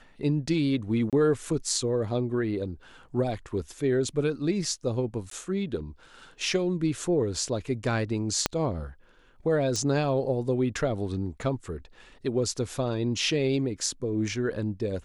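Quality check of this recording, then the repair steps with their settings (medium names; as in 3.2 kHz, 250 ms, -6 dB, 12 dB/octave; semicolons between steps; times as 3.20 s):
1.10–1.13 s: dropout 27 ms
5.30–5.31 s: dropout 13 ms
8.46 s: pop -6 dBFS
9.76 s: pop -18 dBFS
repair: de-click; interpolate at 1.10 s, 27 ms; interpolate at 5.30 s, 13 ms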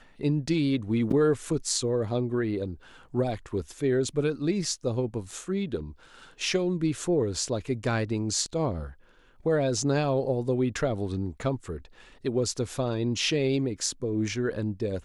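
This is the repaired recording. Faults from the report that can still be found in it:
8.46 s: pop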